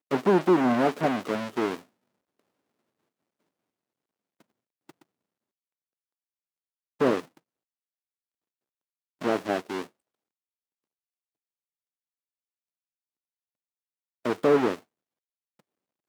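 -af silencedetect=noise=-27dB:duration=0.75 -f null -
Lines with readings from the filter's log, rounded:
silence_start: 1.75
silence_end: 7.01 | silence_duration: 5.26
silence_start: 7.20
silence_end: 9.22 | silence_duration: 2.02
silence_start: 9.83
silence_end: 14.26 | silence_duration: 4.43
silence_start: 14.75
silence_end: 16.09 | silence_duration: 1.34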